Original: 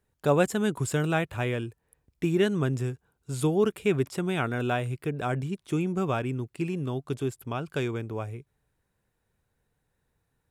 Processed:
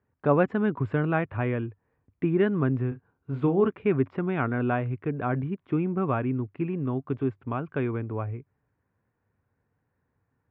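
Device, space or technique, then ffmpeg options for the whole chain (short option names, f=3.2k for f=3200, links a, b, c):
bass cabinet: -filter_complex "[0:a]highpass=71,equalizer=f=100:t=q:w=4:g=7,equalizer=f=260:t=q:w=4:g=6,equalizer=f=1.1k:t=q:w=4:g=4,lowpass=f=2.2k:w=0.5412,lowpass=f=2.2k:w=1.3066,asettb=1/sr,asplit=3[a][b][c];[a]atrim=end=2.884[d];[b]atrim=start=2.88:end=3.68,asetpts=PTS-STARTPTS,afade=t=in:d=0.004:c=qsin,afade=t=out:st=0.796:d=0.004:c=qsin,asplit=2[e][f];[f]adelay=36,volume=-9dB[g];[e][g]amix=inputs=2:normalize=0,atrim=end_sample=35280[h];[c]atrim=start=3.676[i];[d][h]acrossfade=d=0.004:c1=hsin:c2=qsin[j];[j][i]acrossfade=d=0.004:c1=qsin:c2=hsin"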